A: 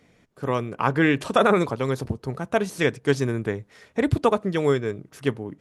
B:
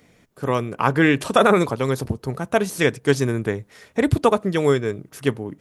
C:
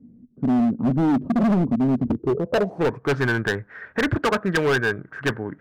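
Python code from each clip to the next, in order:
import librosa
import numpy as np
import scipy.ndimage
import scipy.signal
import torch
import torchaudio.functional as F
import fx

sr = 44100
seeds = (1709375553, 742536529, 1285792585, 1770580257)

y1 = fx.high_shelf(x, sr, hz=9900.0, db=11.0)
y1 = y1 * librosa.db_to_amplitude(3.0)
y2 = fx.filter_sweep_lowpass(y1, sr, from_hz=240.0, to_hz=1600.0, start_s=2.04, end_s=3.23, q=7.9)
y2 = np.clip(y2, -10.0 ** (-16.5 / 20.0), 10.0 ** (-16.5 / 20.0))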